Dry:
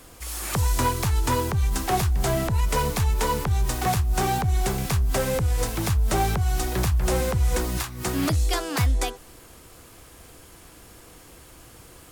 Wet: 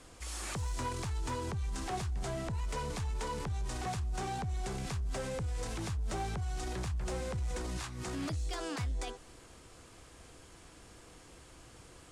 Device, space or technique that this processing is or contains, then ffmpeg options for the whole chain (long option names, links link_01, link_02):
clipper into limiter: -af "lowpass=frequency=9100:width=0.5412,lowpass=frequency=9100:width=1.3066,asoftclip=type=hard:threshold=-16.5dB,alimiter=limit=-24dB:level=0:latency=1:release=12,volume=-6.5dB"